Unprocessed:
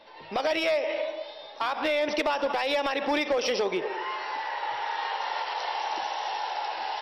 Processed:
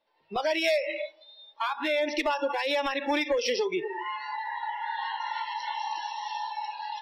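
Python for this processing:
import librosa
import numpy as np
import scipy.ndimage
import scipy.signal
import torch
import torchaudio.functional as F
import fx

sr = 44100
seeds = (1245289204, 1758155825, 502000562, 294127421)

y = fx.noise_reduce_blind(x, sr, reduce_db=24)
y = fx.high_shelf(y, sr, hz=4400.0, db=11.0, at=(0.64, 1.24))
y = fx.notch(y, sr, hz=4600.0, q=9.5, at=(4.6, 5.79))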